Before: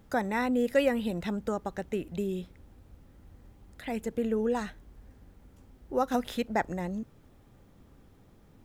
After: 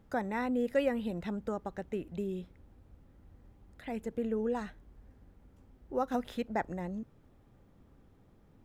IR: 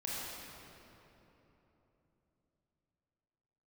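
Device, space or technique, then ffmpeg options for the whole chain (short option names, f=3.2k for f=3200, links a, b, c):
behind a face mask: -af "highshelf=f=3k:g=-7.5,volume=-4dB"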